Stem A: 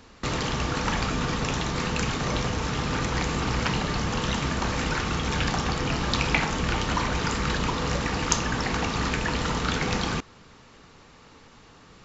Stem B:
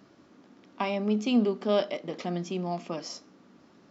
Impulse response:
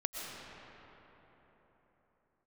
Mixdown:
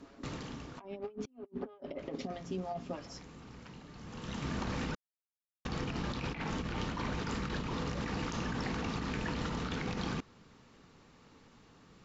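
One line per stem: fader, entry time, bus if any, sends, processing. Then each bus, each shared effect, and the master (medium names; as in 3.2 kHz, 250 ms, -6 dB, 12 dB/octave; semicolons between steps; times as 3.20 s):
-14.0 dB, 0.00 s, muted 4.95–5.65 s, no send, auto duck -17 dB, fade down 0.95 s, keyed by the second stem
2.15 s -3 dB -> 2.37 s -10.5 dB, 0.00 s, no send, comb 7.3 ms, depth 77%; lamp-driven phase shifter 3.1 Hz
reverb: none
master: low-pass that closes with the level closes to 2.2 kHz, closed at -30 dBFS; peaking EQ 210 Hz +6 dB 2 oct; compressor with a negative ratio -38 dBFS, ratio -0.5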